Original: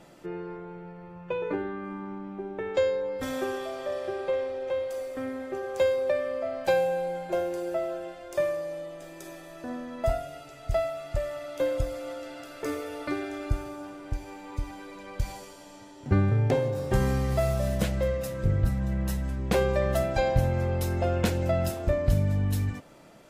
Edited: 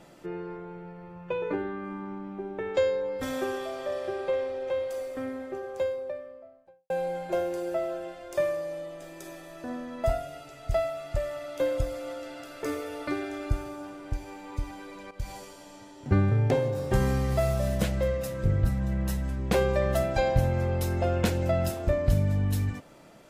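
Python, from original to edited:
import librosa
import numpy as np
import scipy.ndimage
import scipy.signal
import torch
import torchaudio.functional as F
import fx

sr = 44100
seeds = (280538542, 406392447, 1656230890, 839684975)

y = fx.studio_fade_out(x, sr, start_s=4.96, length_s=1.94)
y = fx.edit(y, sr, fx.fade_in_from(start_s=15.11, length_s=0.26, floor_db=-12.5), tone=tone)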